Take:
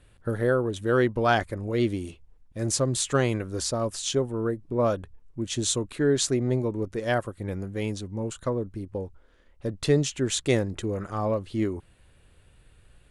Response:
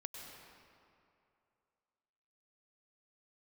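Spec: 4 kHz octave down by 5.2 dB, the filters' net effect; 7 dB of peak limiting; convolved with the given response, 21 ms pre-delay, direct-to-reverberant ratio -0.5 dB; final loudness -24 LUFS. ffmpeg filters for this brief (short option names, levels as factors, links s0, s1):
-filter_complex "[0:a]equalizer=f=4000:t=o:g=-6.5,alimiter=limit=0.15:level=0:latency=1,asplit=2[s0][s1];[1:a]atrim=start_sample=2205,adelay=21[s2];[s1][s2]afir=irnorm=-1:irlink=0,volume=1.41[s3];[s0][s3]amix=inputs=2:normalize=0,volume=1.26"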